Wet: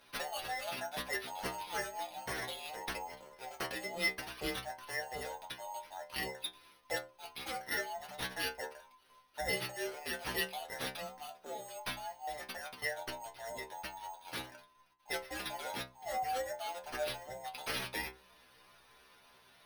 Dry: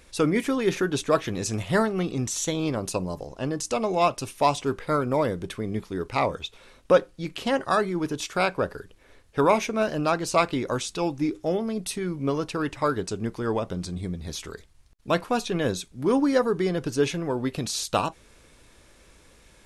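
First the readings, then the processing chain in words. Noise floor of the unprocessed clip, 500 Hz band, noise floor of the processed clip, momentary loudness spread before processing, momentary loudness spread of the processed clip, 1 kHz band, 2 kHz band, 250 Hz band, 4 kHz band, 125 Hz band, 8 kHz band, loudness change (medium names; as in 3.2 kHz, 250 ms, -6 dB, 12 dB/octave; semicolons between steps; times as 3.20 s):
-56 dBFS, -18.0 dB, -64 dBFS, 9 LU, 9 LU, -12.5 dB, -6.0 dB, -24.0 dB, -6.5 dB, -22.5 dB, -12.0 dB, -13.5 dB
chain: every band turned upside down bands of 1 kHz; pre-emphasis filter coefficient 0.9; low-pass that closes with the level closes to 860 Hz, closed at -21 dBFS; careless resampling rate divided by 6×, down none, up hold; inharmonic resonator 62 Hz, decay 0.36 s, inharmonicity 0.002; trim +7.5 dB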